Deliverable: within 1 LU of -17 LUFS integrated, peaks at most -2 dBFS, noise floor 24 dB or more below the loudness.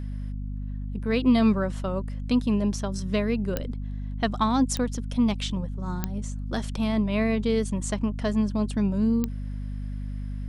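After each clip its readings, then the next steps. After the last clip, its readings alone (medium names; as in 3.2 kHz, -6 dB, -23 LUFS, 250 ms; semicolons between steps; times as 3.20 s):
clicks found 4; hum 50 Hz; highest harmonic 250 Hz; hum level -30 dBFS; loudness -27.0 LUFS; peak level -10.0 dBFS; loudness target -17.0 LUFS
-> de-click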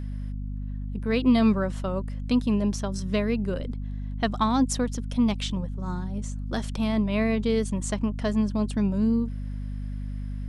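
clicks found 0; hum 50 Hz; highest harmonic 250 Hz; hum level -30 dBFS
-> hum notches 50/100/150/200/250 Hz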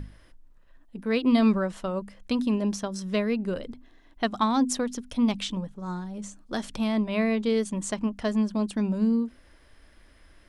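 hum not found; loudness -27.5 LUFS; peak level -10.5 dBFS; loudness target -17.0 LUFS
-> trim +10.5 dB; peak limiter -2 dBFS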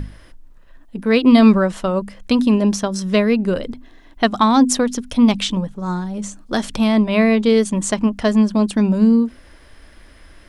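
loudness -17.0 LUFS; peak level -2.0 dBFS; noise floor -46 dBFS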